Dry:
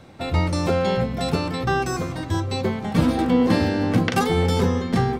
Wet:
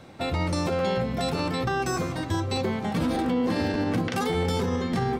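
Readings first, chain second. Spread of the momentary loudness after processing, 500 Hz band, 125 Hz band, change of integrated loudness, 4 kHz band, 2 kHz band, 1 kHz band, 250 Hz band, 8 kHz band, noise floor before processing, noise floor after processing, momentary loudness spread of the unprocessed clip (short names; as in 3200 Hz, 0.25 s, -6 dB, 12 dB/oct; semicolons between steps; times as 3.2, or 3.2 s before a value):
3 LU, -4.0 dB, -6.0 dB, -5.0 dB, -3.0 dB, -4.0 dB, -3.5 dB, -5.0 dB, -2.5 dB, -33 dBFS, -34 dBFS, 6 LU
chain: low shelf 110 Hz -5.5 dB; limiter -17.5 dBFS, peak gain reduction 10.5 dB; crackling interface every 0.59 s, samples 512, repeat, from 0.78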